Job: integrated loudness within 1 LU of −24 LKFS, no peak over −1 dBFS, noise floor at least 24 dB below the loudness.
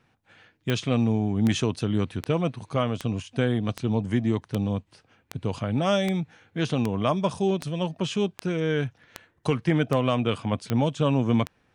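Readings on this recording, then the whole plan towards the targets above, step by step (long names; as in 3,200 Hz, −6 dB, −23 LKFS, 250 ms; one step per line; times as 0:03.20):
number of clicks 15; integrated loudness −26.5 LKFS; sample peak −7.5 dBFS; target loudness −24.0 LKFS
→ click removal
level +2.5 dB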